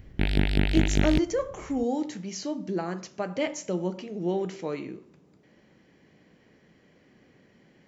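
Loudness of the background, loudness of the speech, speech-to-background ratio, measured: -26.0 LUFS, -30.5 LUFS, -4.5 dB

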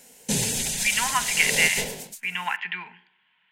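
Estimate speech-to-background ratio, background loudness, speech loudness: -0.5 dB, -24.5 LUFS, -25.0 LUFS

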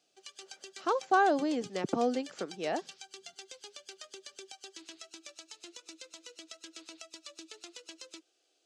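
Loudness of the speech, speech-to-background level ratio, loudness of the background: -31.0 LUFS, 17.0 dB, -48.0 LUFS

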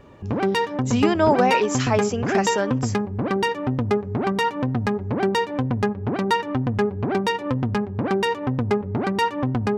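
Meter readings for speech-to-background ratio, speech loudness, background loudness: 1.0 dB, -22.5 LUFS, -23.5 LUFS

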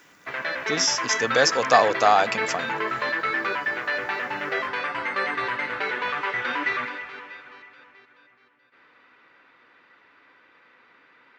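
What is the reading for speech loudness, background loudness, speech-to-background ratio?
-22.0 LUFS, -26.5 LUFS, 4.5 dB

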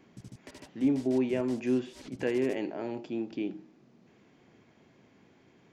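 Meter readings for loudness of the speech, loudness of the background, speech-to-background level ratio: -31.5 LUFS, -51.0 LUFS, 19.5 dB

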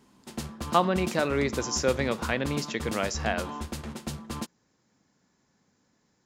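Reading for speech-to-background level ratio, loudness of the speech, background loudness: 8.5 dB, -28.5 LUFS, -37.0 LUFS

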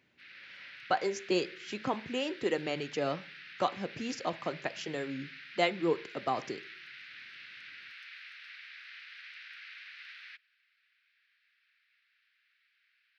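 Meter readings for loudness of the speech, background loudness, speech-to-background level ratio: -34.5 LUFS, -47.0 LUFS, 12.5 dB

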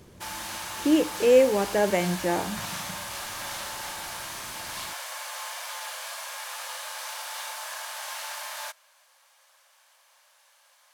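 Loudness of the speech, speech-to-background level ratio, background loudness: -23.5 LUFS, 11.0 dB, -34.5 LUFS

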